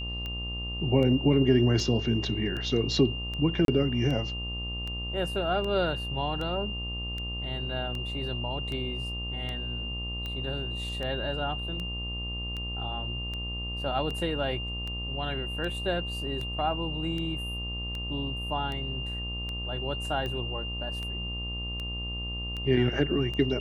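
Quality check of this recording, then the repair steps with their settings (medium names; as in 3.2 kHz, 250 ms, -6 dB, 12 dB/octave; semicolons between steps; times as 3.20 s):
buzz 60 Hz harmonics 21 -36 dBFS
tick 78 rpm -23 dBFS
whine 2.8 kHz -35 dBFS
3.65–3.68 s: dropout 32 ms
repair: de-click; de-hum 60 Hz, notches 21; band-stop 2.8 kHz, Q 30; interpolate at 3.65 s, 32 ms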